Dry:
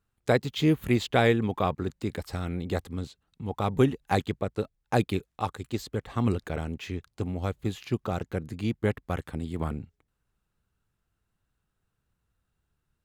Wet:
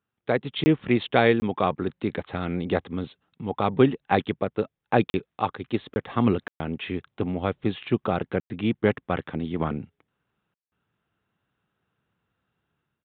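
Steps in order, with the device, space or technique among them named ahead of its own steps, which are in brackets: call with lost packets (HPF 150 Hz 12 dB/oct; downsampling 8000 Hz; AGC gain up to 8 dB; packet loss bursts); gain -1.5 dB

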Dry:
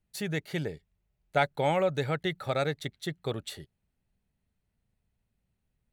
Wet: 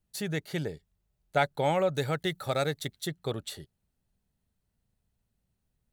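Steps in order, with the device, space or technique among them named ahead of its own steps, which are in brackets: exciter from parts (in parallel at -6 dB: HPF 2100 Hz 24 dB/oct + soft clip -38.5 dBFS, distortion -7 dB); 1.94–3.08 on the sum: high shelf 6700 Hz +8.5 dB

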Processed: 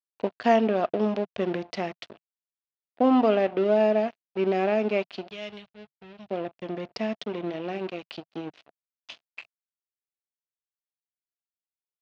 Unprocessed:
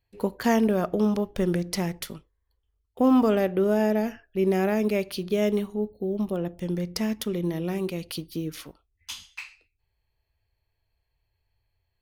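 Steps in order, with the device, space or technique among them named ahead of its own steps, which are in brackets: blown loudspeaker (crossover distortion -36.5 dBFS; speaker cabinet 140–4500 Hz, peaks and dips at 170 Hz -7 dB, 680 Hz +8 dB, 2700 Hz +5 dB); 5.31–6.28 EQ curve 140 Hz 0 dB, 260 Hz -23 dB, 3800 Hz -1 dB

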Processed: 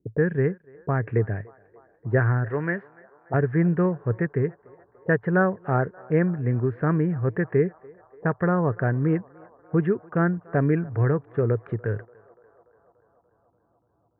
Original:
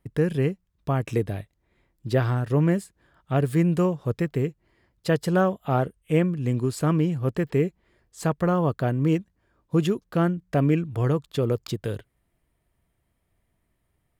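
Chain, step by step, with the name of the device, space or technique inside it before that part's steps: 2.49–3.34 tilt +3.5 dB/oct; envelope filter bass rig (envelope low-pass 320–1700 Hz up, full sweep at -26.5 dBFS; speaker cabinet 71–2100 Hz, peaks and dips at 110 Hz +9 dB, 180 Hz +3 dB, 420 Hz +6 dB, 1200 Hz -3 dB); narrowing echo 0.29 s, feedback 82%, band-pass 840 Hz, level -22 dB; gain -3 dB

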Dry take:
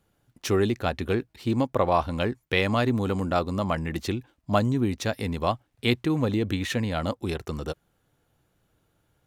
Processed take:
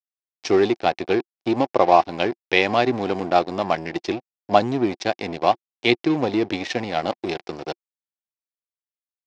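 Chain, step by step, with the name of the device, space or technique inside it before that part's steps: blown loudspeaker (crossover distortion -34.5 dBFS; speaker cabinet 190–5800 Hz, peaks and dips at 230 Hz -4 dB, 350 Hz +6 dB, 750 Hz +9 dB, 1300 Hz -4 dB, 2300 Hz +4 dB, 5200 Hz +7 dB); gain +5 dB

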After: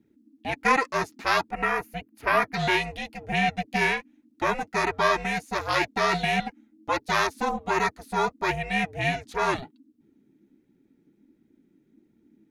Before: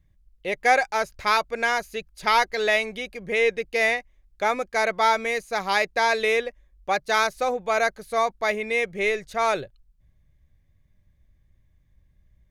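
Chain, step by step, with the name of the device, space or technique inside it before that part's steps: 1.51–2.53 band shelf 5300 Hz -12 dB; alien voice (ring modulator 270 Hz; flange 1.4 Hz, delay 0.8 ms, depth 6.2 ms, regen -34%); gain +4.5 dB

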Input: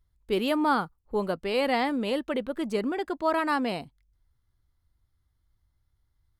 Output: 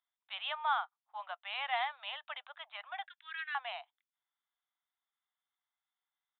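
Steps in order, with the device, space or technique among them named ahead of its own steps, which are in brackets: elliptic high-pass 700 Hz, stop band 40 dB; 3.07–3.55 Chebyshev band-pass 1600–8600 Hz, order 4; musical greeting card (downsampling 8000 Hz; HPF 600 Hz 24 dB/oct; bell 3600 Hz +7.5 dB 0.33 oct); gain -5.5 dB

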